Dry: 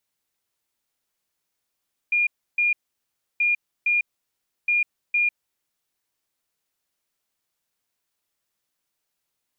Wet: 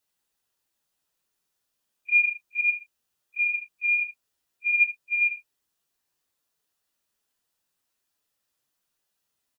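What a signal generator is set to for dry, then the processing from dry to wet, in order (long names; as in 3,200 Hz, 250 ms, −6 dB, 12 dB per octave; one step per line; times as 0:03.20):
beeps in groups sine 2,420 Hz, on 0.15 s, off 0.31 s, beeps 2, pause 0.67 s, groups 3, −17.5 dBFS
random phases in long frames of 100 ms
notch filter 2,200 Hz, Q 9.7
single-tap delay 73 ms −12 dB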